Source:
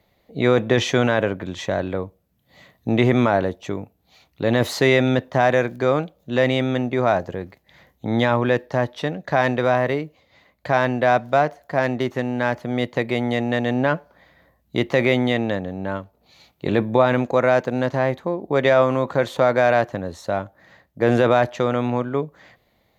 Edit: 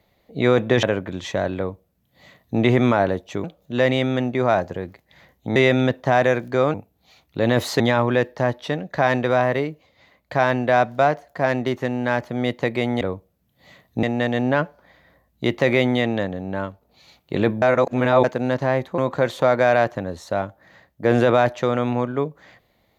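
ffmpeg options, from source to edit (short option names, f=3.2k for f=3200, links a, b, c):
-filter_complex "[0:a]asplit=11[a][b][c][d][e][f][g][h][i][j][k];[a]atrim=end=0.832[l];[b]atrim=start=1.168:end=3.782[m];[c]atrim=start=6.018:end=8.142[n];[d]atrim=start=4.838:end=6.022[o];[e]atrim=start=3.778:end=4.842[p];[f]atrim=start=8.138:end=13.352[q];[g]atrim=start=1.908:end=2.932[r];[h]atrim=start=13.348:end=16.942[s];[i]atrim=start=16.938:end=17.562,asetpts=PTS-STARTPTS,areverse[t];[j]atrim=start=17.558:end=18.302[u];[k]atrim=start=18.948[v];[l][m]acrossfade=d=0.004:c1=hsin:c2=hsin[w];[w][n]acrossfade=d=0.004:c1=hsin:c2=hsin[x];[x][o]acrossfade=d=0.004:c1=hsin:c2=hsin[y];[y][p]acrossfade=d=0.004:c1=hsin:c2=hsin[z];[z][q]acrossfade=d=0.004:c1=hsin:c2=hsin[aa];[aa][r]acrossfade=d=0.004:c1=hsin:c2=hsin[ab];[ab][s]acrossfade=d=0.004:c1=hsin:c2=hsin[ac];[ac][t]acrossfade=d=0.004:c1=hsin:c2=hsin[ad];[ad][u]acrossfade=d=0.004:c1=hsin:c2=hsin[ae];[ae][v]acrossfade=d=0.004:c1=hsin:c2=hsin"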